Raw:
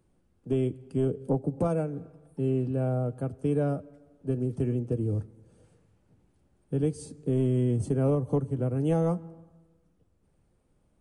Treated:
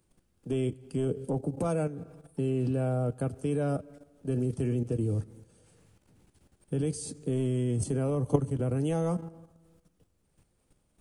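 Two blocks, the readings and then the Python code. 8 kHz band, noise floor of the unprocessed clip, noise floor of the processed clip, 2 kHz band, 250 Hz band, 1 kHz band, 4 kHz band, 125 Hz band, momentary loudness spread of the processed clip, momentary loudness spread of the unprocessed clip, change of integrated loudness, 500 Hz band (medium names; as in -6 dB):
+8.0 dB, -69 dBFS, -72 dBFS, +2.0 dB, -2.0 dB, -1.0 dB, no reading, -1.5 dB, 7 LU, 9 LU, -2.0 dB, -2.0 dB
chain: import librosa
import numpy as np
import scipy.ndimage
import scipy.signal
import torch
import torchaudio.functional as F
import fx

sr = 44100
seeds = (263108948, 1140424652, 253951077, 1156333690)

y = fx.high_shelf(x, sr, hz=2100.0, db=10.5)
y = fx.level_steps(y, sr, step_db=11)
y = y * librosa.db_to_amplitude(5.0)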